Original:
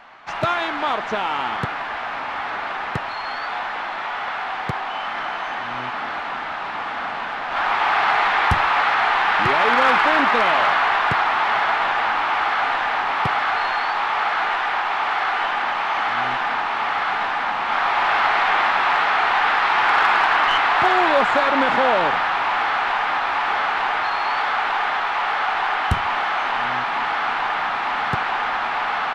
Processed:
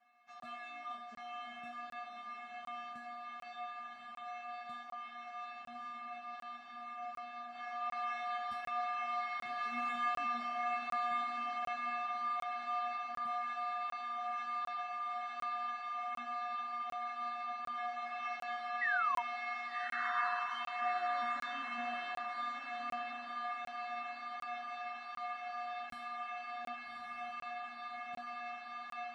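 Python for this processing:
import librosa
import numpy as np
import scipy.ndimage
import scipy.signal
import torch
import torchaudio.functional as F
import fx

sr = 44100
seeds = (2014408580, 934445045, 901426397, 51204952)

y = fx.low_shelf(x, sr, hz=250.0, db=-8.5)
y = fx.notch(y, sr, hz=880.0, q=12.0)
y = fx.comb_fb(y, sr, f0_hz=240.0, decay_s=0.65, harmonics='odd', damping=0.0, mix_pct=100)
y = fx.spec_paint(y, sr, seeds[0], shape='fall', start_s=18.81, length_s=0.4, low_hz=930.0, high_hz=2000.0, level_db=-30.0)
y = fx.doubler(y, sr, ms=14.0, db=-9.5)
y = fx.echo_diffused(y, sr, ms=1176, feedback_pct=43, wet_db=-4)
y = fx.buffer_crackle(y, sr, first_s=0.4, period_s=0.75, block=1024, kind='zero')
y = F.gain(torch.from_numpy(y), -4.0).numpy()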